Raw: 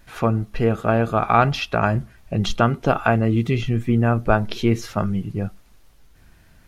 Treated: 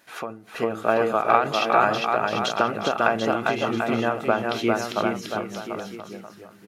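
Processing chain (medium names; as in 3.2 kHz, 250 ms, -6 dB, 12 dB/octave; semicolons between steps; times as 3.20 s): high-pass 340 Hz 12 dB/octave; bouncing-ball echo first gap 400 ms, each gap 0.85×, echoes 5; endings held to a fixed fall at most 110 dB/s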